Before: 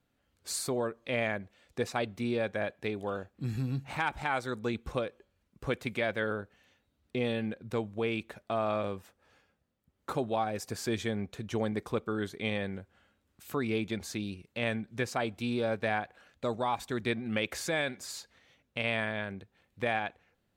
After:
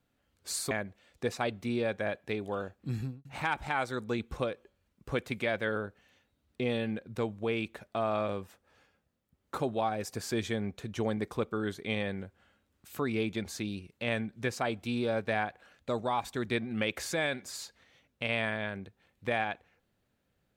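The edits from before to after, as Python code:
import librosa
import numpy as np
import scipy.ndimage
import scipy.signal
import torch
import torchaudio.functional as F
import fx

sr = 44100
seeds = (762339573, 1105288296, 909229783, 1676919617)

y = fx.studio_fade_out(x, sr, start_s=3.49, length_s=0.31)
y = fx.edit(y, sr, fx.cut(start_s=0.71, length_s=0.55), tone=tone)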